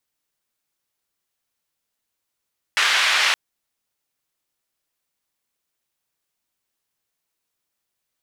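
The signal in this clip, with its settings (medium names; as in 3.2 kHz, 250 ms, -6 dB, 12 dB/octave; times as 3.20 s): noise band 1.4–2.7 kHz, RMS -18.5 dBFS 0.57 s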